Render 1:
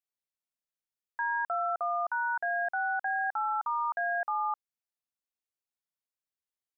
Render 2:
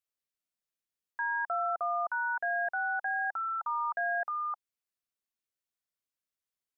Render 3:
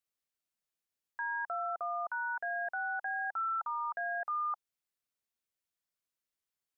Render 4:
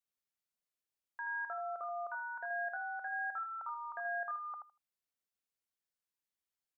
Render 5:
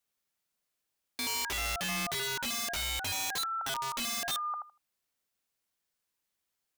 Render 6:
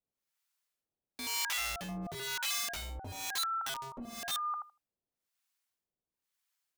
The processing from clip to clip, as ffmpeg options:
-af "bandreject=f=850:w=5.1"
-af "alimiter=level_in=5.5dB:limit=-24dB:level=0:latency=1:release=19,volume=-5.5dB"
-af "aecho=1:1:79|158|237:0.447|0.0715|0.0114,volume=-5dB"
-af "aeval=exprs='(mod(75*val(0)+1,2)-1)/75':c=same,volume=8.5dB"
-filter_complex "[0:a]acrossover=split=770[a][b];[a]aeval=exprs='val(0)*(1-1/2+1/2*cos(2*PI*1*n/s))':c=same[c];[b]aeval=exprs='val(0)*(1-1/2-1/2*cos(2*PI*1*n/s))':c=same[d];[c][d]amix=inputs=2:normalize=0,volume=1dB"

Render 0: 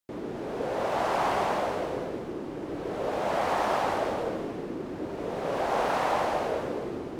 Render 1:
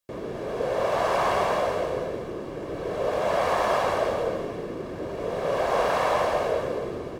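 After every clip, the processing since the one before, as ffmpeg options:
-af "aecho=1:1:1.8:0.45,volume=2.5dB"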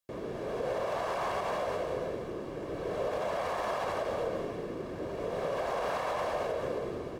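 -af "alimiter=limit=-19.5dB:level=0:latency=1:release=83,volume=-4.5dB"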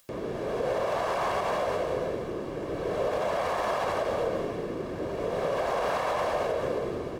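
-af "acompressor=mode=upward:threshold=-51dB:ratio=2.5,volume=4.5dB"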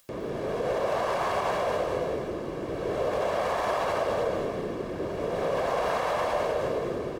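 -af "aecho=1:1:205:0.473"

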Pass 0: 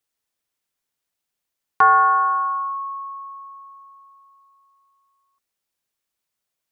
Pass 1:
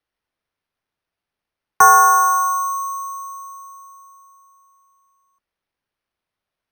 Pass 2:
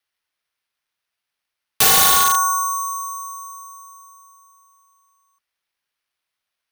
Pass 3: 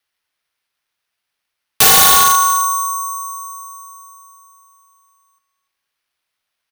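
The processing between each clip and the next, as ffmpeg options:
-filter_complex "[0:a]bass=f=250:g=-3,treble=f=4k:g=-15,acrossover=split=130|470|680[a][b][c][d];[a]acontrast=69[e];[e][b][c][d]amix=inputs=4:normalize=0,acrusher=samples=6:mix=1:aa=0.000001,volume=4dB"
-af "afreqshift=13,tiltshelf=f=970:g=-8.5,aeval=exprs='(mod(2*val(0)+1,2)-1)/2':c=same,volume=-2dB"
-af "aecho=1:1:294|588:0.168|0.0285,volume=4.5dB"

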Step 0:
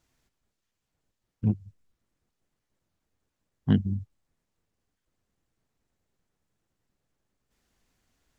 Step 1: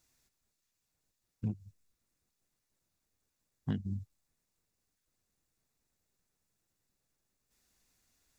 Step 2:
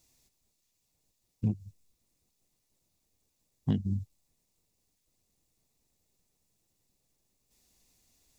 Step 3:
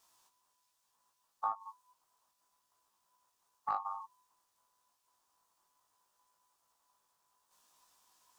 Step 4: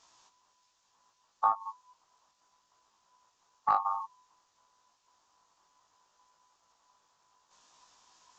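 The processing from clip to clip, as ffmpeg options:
-af "highshelf=f=3.3k:g=12,bandreject=f=3.1k:w=10,acompressor=threshold=-24dB:ratio=6,volume=-6dB"
-af "equalizer=f=1.5k:w=2:g=-12,volume=6dB"
-af "acompressor=threshold=-33dB:ratio=4,aeval=exprs='val(0)*sin(2*PI*1000*n/s)':c=same,flanger=delay=18:depth=2.4:speed=0.63,volume=5dB"
-af "aresample=16000,aresample=44100,volume=8.5dB"

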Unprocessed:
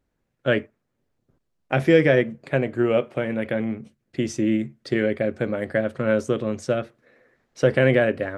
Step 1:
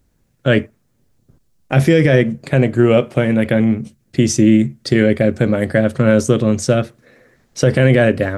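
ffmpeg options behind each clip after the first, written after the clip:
-af "bass=f=250:g=8,treble=f=4k:g=10,alimiter=level_in=8.5dB:limit=-1dB:release=50:level=0:latency=1,volume=-1dB"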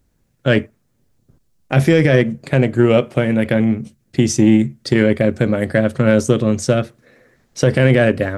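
-af "aeval=exprs='0.841*(cos(1*acos(clip(val(0)/0.841,-1,1)))-cos(1*PI/2))+0.0473*(cos(3*acos(clip(val(0)/0.841,-1,1)))-cos(3*PI/2))':c=same"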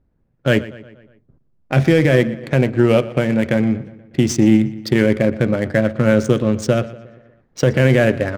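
-filter_complex "[0:a]adynamicsmooth=sensitivity=5.5:basefreq=1.6k,asplit=2[a][b];[b]adelay=120,lowpass=f=4.8k:p=1,volume=-17dB,asplit=2[c][d];[d]adelay=120,lowpass=f=4.8k:p=1,volume=0.54,asplit=2[e][f];[f]adelay=120,lowpass=f=4.8k:p=1,volume=0.54,asplit=2[g][h];[h]adelay=120,lowpass=f=4.8k:p=1,volume=0.54,asplit=2[i][j];[j]adelay=120,lowpass=f=4.8k:p=1,volume=0.54[k];[a][c][e][g][i][k]amix=inputs=6:normalize=0,volume=-1dB"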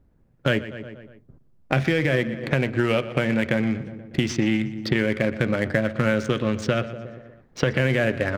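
-filter_complex "[0:a]acrossover=split=1200|4100[a][b][c];[a]acompressor=threshold=-25dB:ratio=4[d];[b]acompressor=threshold=-29dB:ratio=4[e];[c]acompressor=threshold=-53dB:ratio=4[f];[d][e][f]amix=inputs=3:normalize=0,volume=3.5dB"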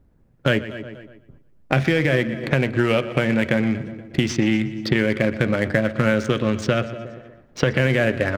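-af "aecho=1:1:237|474:0.0944|0.0283,volume=2.5dB"

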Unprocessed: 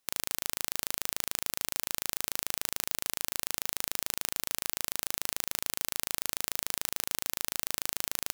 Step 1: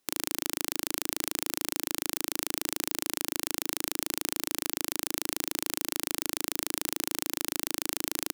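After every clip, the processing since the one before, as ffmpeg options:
-af "equalizer=f=310:w=1.7:g=12.5,volume=1.5dB"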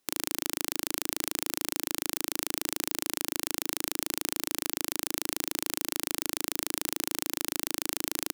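-af anull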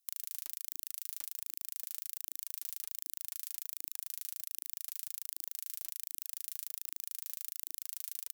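-af "aderivative,acompressor=threshold=-31dB:ratio=2.5,aphaser=in_gain=1:out_gain=1:delay=4.1:decay=0.51:speed=1.3:type=triangular,volume=-6.5dB"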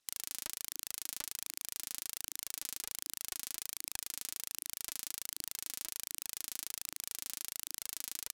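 -af "adynamicsmooth=sensitivity=7:basefreq=5.9k,volume=11.5dB"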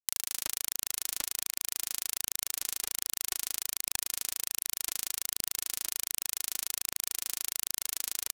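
-filter_complex "[0:a]aeval=exprs='sgn(val(0))*max(abs(val(0))-0.00178,0)':c=same,asplit=2[a][b];[b]adelay=183,lowpass=f=3.5k:p=1,volume=-20dB,asplit=2[c][d];[d]adelay=183,lowpass=f=3.5k:p=1,volume=0.48,asplit=2[e][f];[f]adelay=183,lowpass=f=3.5k:p=1,volume=0.48,asplit=2[g][h];[h]adelay=183,lowpass=f=3.5k:p=1,volume=0.48[i];[a][c][e][g][i]amix=inputs=5:normalize=0,volume=7.5dB"

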